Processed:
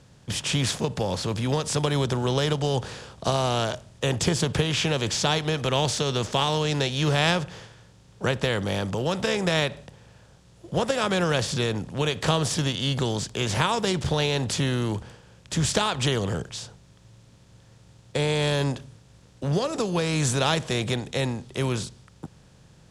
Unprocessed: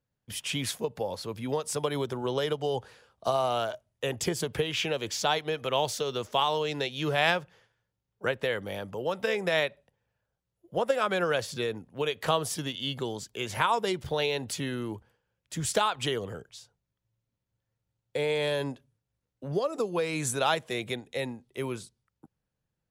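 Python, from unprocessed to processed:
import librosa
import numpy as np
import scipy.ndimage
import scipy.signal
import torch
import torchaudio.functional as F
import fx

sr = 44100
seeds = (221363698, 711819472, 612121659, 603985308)

y = fx.bin_compress(x, sr, power=0.6)
y = scipy.signal.sosfilt(scipy.signal.butter(2, 5400.0, 'lowpass', fs=sr, output='sos'), y)
y = fx.bass_treble(y, sr, bass_db=13, treble_db=13)
y = F.gain(torch.from_numpy(y), -2.5).numpy()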